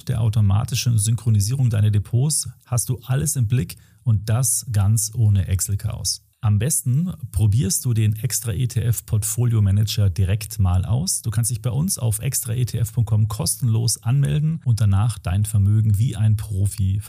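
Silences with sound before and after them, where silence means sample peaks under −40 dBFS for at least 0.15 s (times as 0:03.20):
0:03.82–0:04.06
0:06.17–0:06.43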